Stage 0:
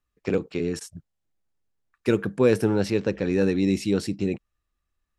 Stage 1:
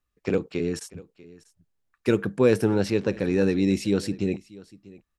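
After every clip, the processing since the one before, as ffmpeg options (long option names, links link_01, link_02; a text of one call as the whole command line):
ffmpeg -i in.wav -af "aecho=1:1:642:0.0891" out.wav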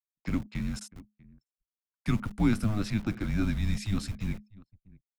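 ffmpeg -i in.wav -filter_complex "[0:a]anlmdn=0.0251,acrossover=split=190|700|4500[link_01][link_02][link_03][link_04];[link_01]acrusher=bits=4:dc=4:mix=0:aa=0.000001[link_05];[link_05][link_02][link_03][link_04]amix=inputs=4:normalize=0,afreqshift=-210,volume=-5dB" out.wav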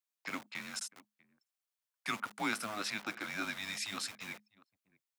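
ffmpeg -i in.wav -af "highpass=740,volume=3.5dB" out.wav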